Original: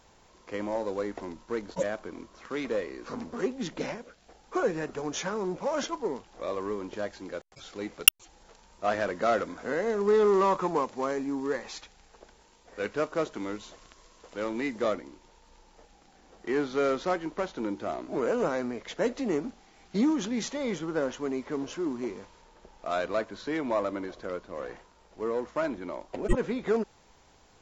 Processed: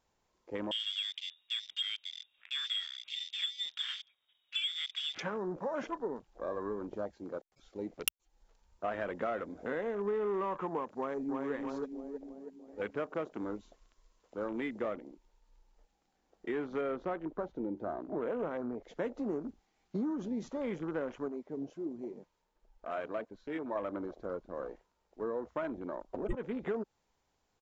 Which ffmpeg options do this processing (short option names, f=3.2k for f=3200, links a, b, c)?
-filter_complex "[0:a]asettb=1/sr,asplit=3[a][b][c];[a]atrim=end=0.714[d];[b]atrim=start=0.71:end=5.19,asetpts=PTS-STARTPTS,afade=t=in:d=0.004:c=qsin,afade=t=out:st=4.476:d=0.004:c=qsin,lowpass=f=3.2k:t=q:w=0.5098,lowpass=f=3.2k:t=q:w=0.6013,lowpass=f=3.2k:t=q:w=0.9,lowpass=f=3.2k:t=q:w=2.563,afreqshift=-3800[e];[c]atrim=start=5.186[f];[d][e]acrossfade=d=0.004:c1=hsin:c2=qsin[g];[g][f]acrossfade=d=0.004:c1=qsin:c2=hsin,asplit=2[h][i];[i]afade=t=in:st=10.96:d=0.01,afade=t=out:st=11.53:d=0.01,aecho=0:1:320|640|960|1280|1600|1920|2240:0.595662|0.327614|0.180188|0.0991033|0.0545068|0.0299787|0.0164883[j];[h][j]amix=inputs=2:normalize=0,asettb=1/sr,asplit=3[k][l][m];[k]atrim=end=16.814[n];[l]atrim=start=16.81:end=18.83,asetpts=PTS-STARTPTS,afade=t=in:d=0.004:c=qsin,afade=t=out:st=2.016:d=0.004:c=qsin,equalizer=f=9.3k:t=o:w=2.9:g=-8.5[o];[m]atrim=start=18.826[p];[n][o]acrossfade=d=0.004:c1=hsin:c2=qsin[q];[q][p]acrossfade=d=0.004:c1=qsin:c2=hsin,asettb=1/sr,asplit=3[r][s][t];[r]atrim=end=21.284[u];[s]atrim=start=21.28:end=23.76,asetpts=PTS-STARTPTS,afade=t=in:d=0.004:c=qsin,afade=t=out:st=2.476:d=0.004:c=qsin,flanger=delay=1.2:depth=5.9:regen=69:speed=1.4:shape=sinusoidal[v];[t]atrim=start=23.756[w];[u][v]acrossfade=d=0.004:c1=hsin:c2=qsin[x];[x][w]acrossfade=d=0.004:c1=qsin:c2=hsin,afwtdn=0.0112,acompressor=threshold=-30dB:ratio=4,volume=-2.5dB"